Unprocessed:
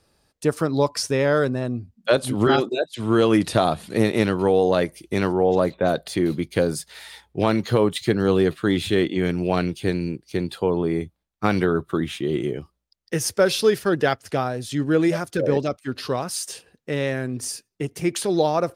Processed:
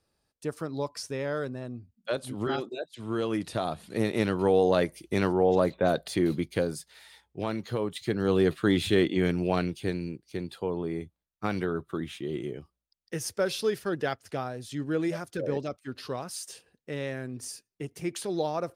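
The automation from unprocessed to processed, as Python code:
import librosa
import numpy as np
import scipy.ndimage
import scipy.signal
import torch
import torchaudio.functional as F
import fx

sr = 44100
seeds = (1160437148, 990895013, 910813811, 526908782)

y = fx.gain(x, sr, db=fx.line((3.51, -12.0), (4.55, -4.0), (6.39, -4.0), (6.92, -11.5), (7.88, -11.5), (8.52, -3.0), (9.22, -3.0), (10.24, -9.5)))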